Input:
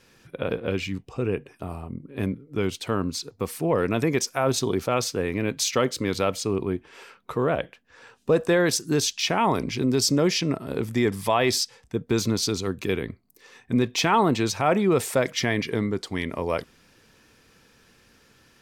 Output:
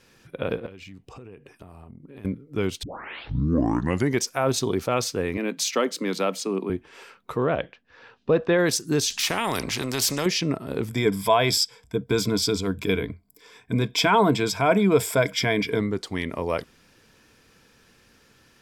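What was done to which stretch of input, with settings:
0:00.66–0:02.25: downward compressor 10 to 1, threshold −39 dBFS
0:02.83: tape start 1.40 s
0:05.37–0:06.70: Chebyshev high-pass filter 160 Hz, order 8
0:07.36–0:08.57: low-pass filter 6,400 Hz → 3,800 Hz 24 dB per octave
0:09.10–0:10.26: every bin compressed towards the loudest bin 2 to 1
0:10.89–0:15.80: EQ curve with evenly spaced ripples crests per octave 1.7, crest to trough 11 dB

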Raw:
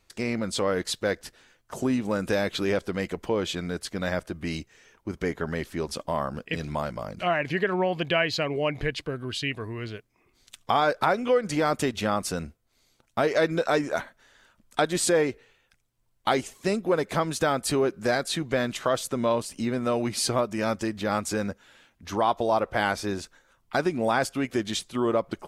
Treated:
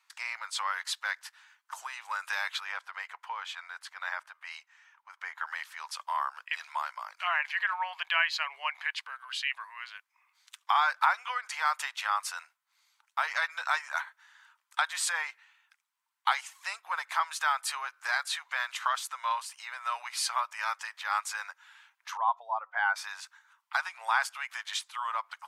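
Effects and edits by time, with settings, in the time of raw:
0:02.60–0:05.38: high-shelf EQ 2,800 Hz −9 dB
0:22.17–0:22.96: expanding power law on the bin magnitudes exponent 1.7
whole clip: elliptic high-pass filter 900 Hz, stop band 70 dB; parametric band 1,300 Hz +6.5 dB 1.9 octaves; level −4 dB

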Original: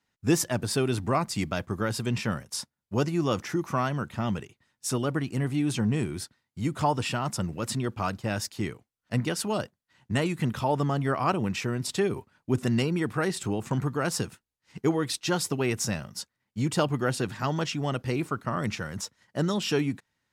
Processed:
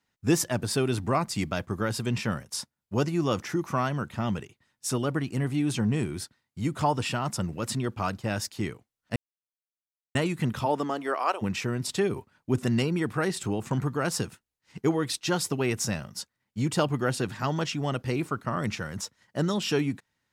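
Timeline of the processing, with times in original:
0:09.16–0:10.15: silence
0:10.65–0:11.41: high-pass filter 160 Hz → 530 Hz 24 dB per octave

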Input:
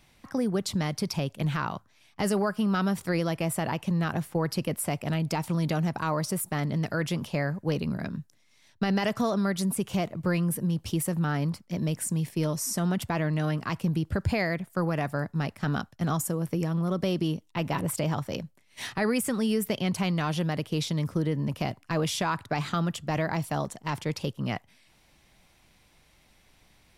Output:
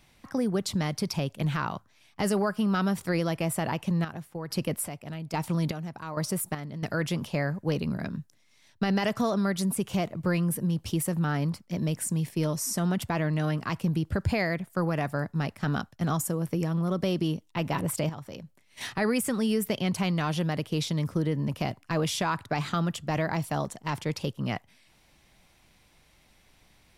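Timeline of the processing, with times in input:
0:03.67–0:06.83: square-wave tremolo 1.2 Hz, depth 65%, duty 45%
0:18.09–0:18.81: downward compressor 2 to 1, threshold −43 dBFS

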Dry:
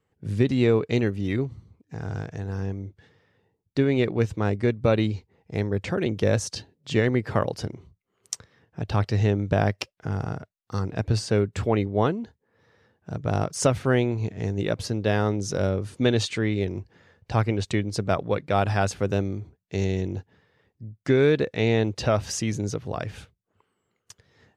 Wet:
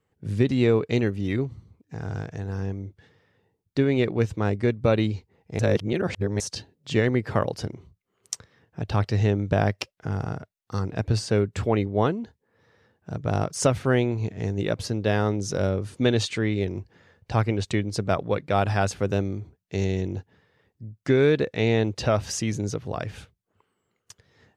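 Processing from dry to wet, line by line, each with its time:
0:05.59–0:06.40: reverse

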